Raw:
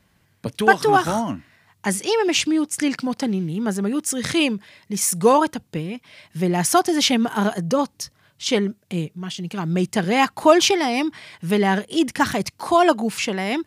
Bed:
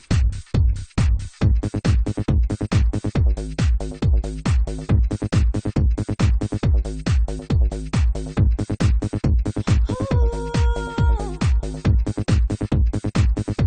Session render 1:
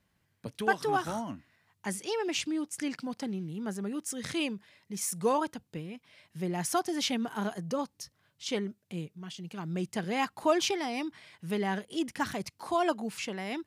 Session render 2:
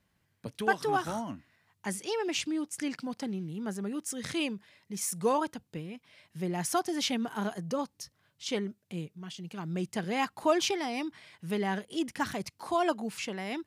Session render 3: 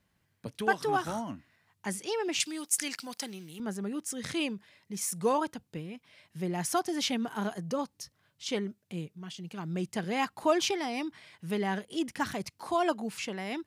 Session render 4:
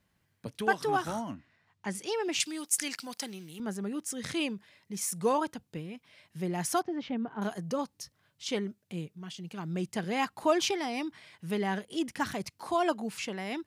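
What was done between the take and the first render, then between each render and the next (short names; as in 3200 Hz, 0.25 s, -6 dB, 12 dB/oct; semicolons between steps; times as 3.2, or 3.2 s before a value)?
gain -12.5 dB
nothing audible
2.4–3.6 tilt +4 dB/oct
1.34–1.95 air absorption 73 m; 6.82–7.42 tape spacing loss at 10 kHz 45 dB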